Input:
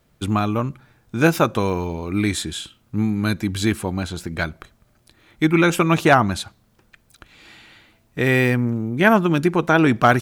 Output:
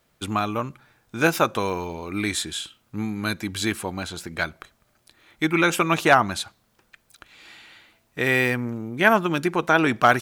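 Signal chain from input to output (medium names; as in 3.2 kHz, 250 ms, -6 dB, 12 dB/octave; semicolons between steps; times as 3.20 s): bass shelf 340 Hz -10.5 dB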